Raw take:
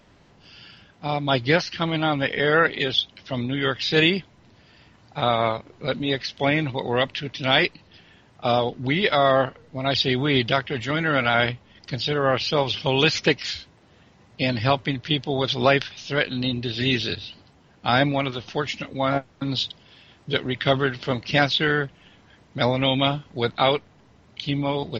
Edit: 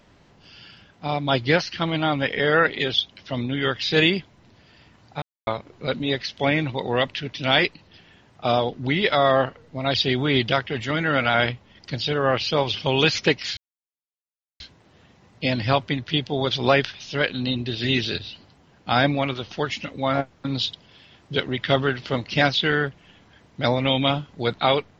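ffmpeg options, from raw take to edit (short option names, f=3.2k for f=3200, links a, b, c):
-filter_complex "[0:a]asplit=4[a][b][c][d];[a]atrim=end=5.22,asetpts=PTS-STARTPTS,afade=t=out:st=5.216:d=0.004:c=hsin[e];[b]atrim=start=5.22:end=5.47,asetpts=PTS-STARTPTS,volume=0[f];[c]atrim=start=5.47:end=13.57,asetpts=PTS-STARTPTS,afade=t=in:d=0.004:c=hsin,afade=t=out:st=8.096:d=0.004:c=hsin,apad=pad_dur=1.03[g];[d]atrim=start=13.57,asetpts=PTS-STARTPTS,afade=t=in:d=0.004:c=hsin[h];[e][f][g][h]concat=n=4:v=0:a=1"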